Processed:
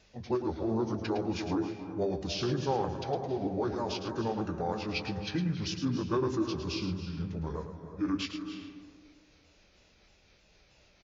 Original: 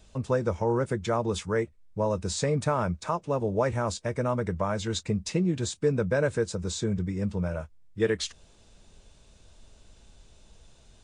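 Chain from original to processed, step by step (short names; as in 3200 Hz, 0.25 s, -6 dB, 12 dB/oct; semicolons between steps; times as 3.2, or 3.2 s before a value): repeated pitch sweeps -3 st, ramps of 0.315 s; HPF 130 Hz 6 dB/oct; bell 170 Hz -2.5 dB 1.7 oct; notches 50/100/150/200/250/300/350/400 Hz; formant shift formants -5 st; echo 0.109 s -9 dB; reverb RT60 1.6 s, pre-delay 0.239 s, DRR 8.5 dB; downsampling 16000 Hz; gain -1.5 dB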